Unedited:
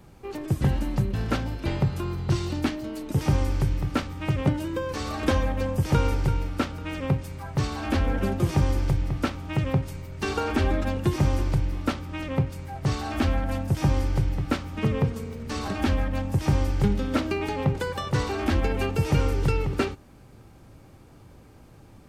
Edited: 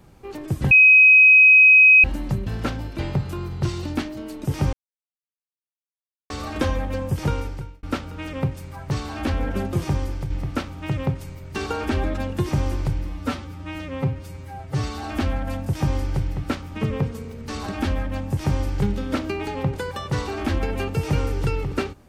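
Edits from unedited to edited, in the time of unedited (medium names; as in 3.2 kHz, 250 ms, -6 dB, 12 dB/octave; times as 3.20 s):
0.71 s: add tone 2.53 kHz -8 dBFS 1.33 s
3.40–4.97 s: mute
5.84–6.50 s: fade out linear
8.46–8.97 s: fade out, to -6.5 dB
11.74–13.05 s: stretch 1.5×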